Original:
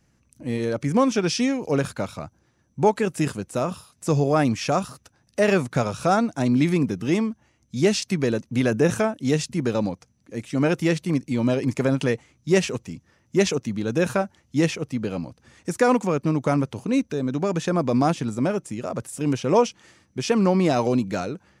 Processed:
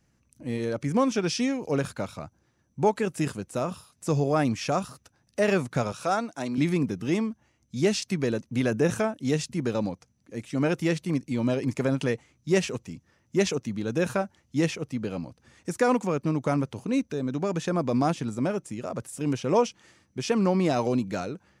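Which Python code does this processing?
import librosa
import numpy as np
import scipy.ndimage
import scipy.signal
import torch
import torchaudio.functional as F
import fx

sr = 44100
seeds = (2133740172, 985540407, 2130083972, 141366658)

y = fx.highpass(x, sr, hz=470.0, slope=6, at=(5.92, 6.58))
y = F.gain(torch.from_numpy(y), -4.0).numpy()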